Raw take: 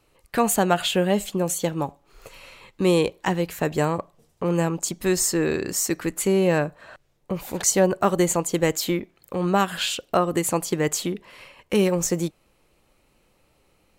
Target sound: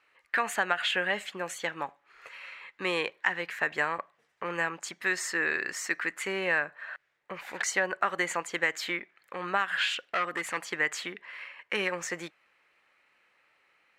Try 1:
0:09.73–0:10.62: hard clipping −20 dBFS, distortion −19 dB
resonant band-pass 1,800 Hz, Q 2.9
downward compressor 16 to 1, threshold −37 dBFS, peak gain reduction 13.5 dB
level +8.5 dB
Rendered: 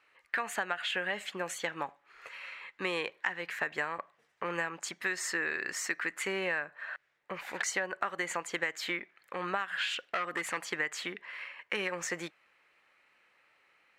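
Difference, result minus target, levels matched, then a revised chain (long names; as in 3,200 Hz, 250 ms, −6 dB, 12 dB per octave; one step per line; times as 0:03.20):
downward compressor: peak gain reduction +6.5 dB
0:09.73–0:10.62: hard clipping −20 dBFS, distortion −19 dB
resonant band-pass 1,800 Hz, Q 2.9
downward compressor 16 to 1, threshold −30 dBFS, peak gain reduction 7 dB
level +8.5 dB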